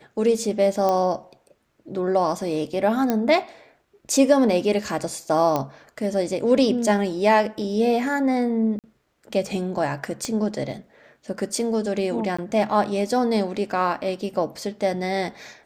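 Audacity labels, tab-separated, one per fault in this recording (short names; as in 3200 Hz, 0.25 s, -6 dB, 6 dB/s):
0.890000	0.890000	pop -11 dBFS
3.100000	3.100000	pop -9 dBFS
5.560000	5.560000	pop -10 dBFS
8.790000	8.840000	gap 48 ms
10.250000	10.250000	pop -15 dBFS
12.370000	12.380000	gap 15 ms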